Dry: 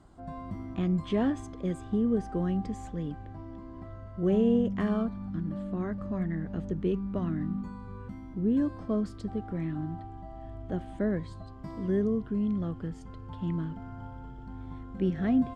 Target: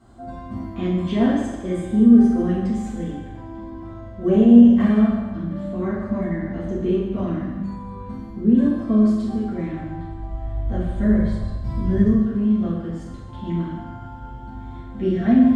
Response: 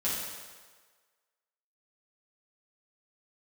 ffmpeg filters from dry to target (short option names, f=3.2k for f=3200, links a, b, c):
-filter_complex "[0:a]asettb=1/sr,asplit=3[a][b][c];[a]atrim=end=9.644[d];[b]atrim=start=9.64:end=12.12,asetpts=PTS-STARTPTS,afade=t=in:d=0.004:c=qsin,afade=t=out:st=2.476:d=0.004:c=qsin,asubboost=boost=11.5:cutoff=120[e];[c]atrim=start=12.116[f];[d][e]acrossfade=d=0.004:c1=hsin:c2=qsin[g];[g][f]acrossfade=d=0.004:c1=qsin:c2=hsin[h];[1:a]atrim=start_sample=2205,asetrate=52920,aresample=44100[i];[h][i]afir=irnorm=-1:irlink=0,volume=2.5dB"